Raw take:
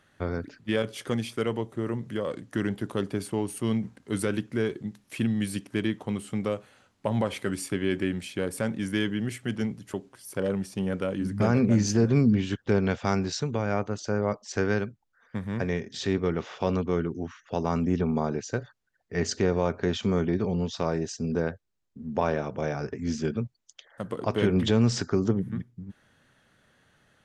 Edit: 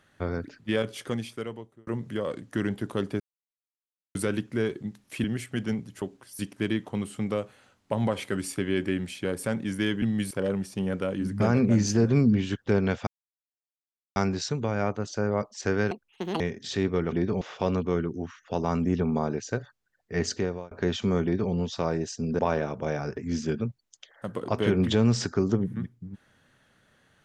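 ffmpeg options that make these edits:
-filter_complex "[0:a]asplit=15[s0][s1][s2][s3][s4][s5][s6][s7][s8][s9][s10][s11][s12][s13][s14];[s0]atrim=end=1.87,asetpts=PTS-STARTPTS,afade=t=out:st=0.92:d=0.95[s15];[s1]atrim=start=1.87:end=3.2,asetpts=PTS-STARTPTS,afade=t=in:d=0.004:c=hsin,afade=t=out:st=1.326:d=0.004:c=hsin[s16];[s2]atrim=start=3.2:end=4.15,asetpts=PTS-STARTPTS,volume=0[s17];[s3]atrim=start=4.15:end=5.242,asetpts=PTS-STARTPTS,afade=t=in:d=0.004:c=hsin[s18];[s4]atrim=start=9.158:end=10.312[s19];[s5]atrim=start=5.528:end=9.162[s20];[s6]atrim=start=5.238:end=5.532[s21];[s7]atrim=start=10.308:end=13.07,asetpts=PTS-STARTPTS,afade=t=out:st=2.758:d=0.004:c=hsin,apad=pad_dur=1.09[s22];[s8]atrim=start=13.07:end=14.824,asetpts=PTS-STARTPTS,afade=t=in:d=0.004:c=hsin[s23];[s9]atrim=start=14.82:end=15.7,asetpts=PTS-STARTPTS,asetrate=78939,aresample=44100,atrim=end_sample=21680,asetpts=PTS-STARTPTS[s24];[s10]atrim=start=15.696:end=16.422[s25];[s11]atrim=start=20.238:end=20.532[s26];[s12]atrim=start=16.418:end=19.72,asetpts=PTS-STARTPTS,afade=t=out:st=2.872:d=0.43[s27];[s13]atrim=start=19.72:end=21.402,asetpts=PTS-STARTPTS,afade=t=in:d=0.004:c=hsin[s28];[s14]atrim=start=22.148[s29];[s15][s16][s17][s18]concat=n=4:v=0:a=1[s30];[s30][s19]acrossfade=d=0.004:c1=hsin:c2=hsin[s31];[s31][s20]acrossfade=d=0.004:c1=hsin:c2=hsin[s32];[s32][s21]acrossfade=d=0.004:c1=hsin:c2=hsin[s33];[s22][s23]concat=n=2:v=0:a=1[s34];[s33][s34]acrossfade=d=0.004:c1=hsin:c2=hsin[s35];[s35][s24]acrossfade=d=0.004:c1=hsin:c2=hsin[s36];[s36][s25]acrossfade=d=0.004:c1=hsin:c2=hsin[s37];[s37][s26]acrossfade=d=0.004:c1=hsin:c2=hsin[s38];[s27][s28]concat=n=2:v=0:a=1[s39];[s38][s39]acrossfade=d=0.004:c1=hsin:c2=hsin[s40];[s40][s29]acrossfade=d=0.004:c1=hsin:c2=hsin"

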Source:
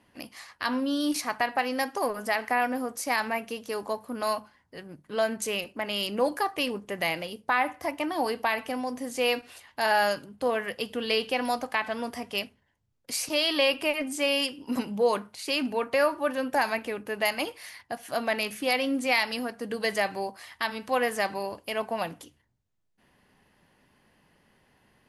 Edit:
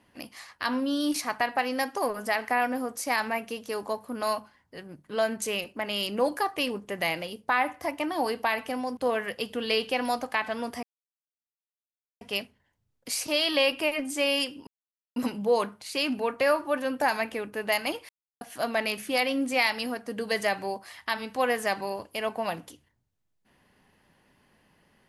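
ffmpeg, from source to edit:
-filter_complex "[0:a]asplit=6[s0][s1][s2][s3][s4][s5];[s0]atrim=end=8.972[s6];[s1]atrim=start=10.368:end=12.23,asetpts=PTS-STARTPTS,afade=t=out:st=1.858:d=0.004:c=hsin,apad=pad_dur=1.38[s7];[s2]atrim=start=12.23:end=14.69,asetpts=PTS-STARTPTS,afade=t=in:d=0.004:c=hsin,afade=t=out:st=2.456:d=0.004:c=hsin,apad=pad_dur=0.49[s8];[s3]atrim=start=14.69:end=17.62,asetpts=PTS-STARTPTS,afade=t=in:d=0.004:c=hsin,afade=t=out:st=2.926:d=0.004:c=hsin[s9];[s4]atrim=start=17.62:end=17.94,asetpts=PTS-STARTPTS,volume=0[s10];[s5]atrim=start=17.94,asetpts=PTS-STARTPTS,afade=t=in:d=0.004:c=hsin[s11];[s7][s8][s9][s10][s11]concat=n=5:v=0:a=1[s12];[s6][s12]acrossfade=d=0.004:c1=hsin:c2=hsin"

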